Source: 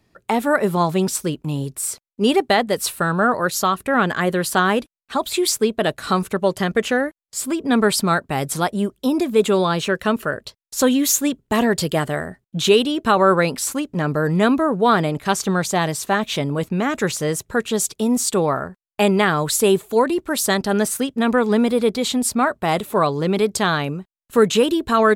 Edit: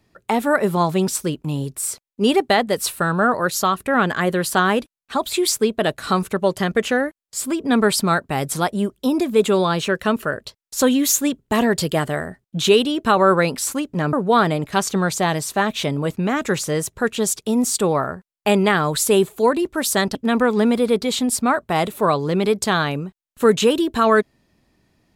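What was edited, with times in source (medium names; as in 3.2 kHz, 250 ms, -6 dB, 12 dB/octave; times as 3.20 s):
14.13–14.66 s: delete
20.68–21.08 s: delete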